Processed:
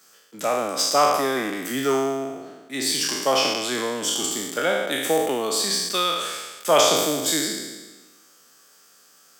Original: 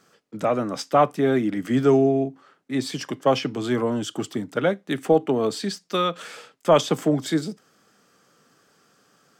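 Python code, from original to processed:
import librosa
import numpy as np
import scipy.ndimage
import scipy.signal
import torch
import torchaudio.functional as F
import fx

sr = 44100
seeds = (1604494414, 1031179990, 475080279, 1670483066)

y = fx.spec_trails(x, sr, decay_s=1.28)
y = scipy.signal.sosfilt(scipy.signal.butter(2, 95.0, 'highpass', fs=sr, output='sos'), y)
y = fx.riaa(y, sr, side='recording')
y = y * 10.0 ** (-2.0 / 20.0)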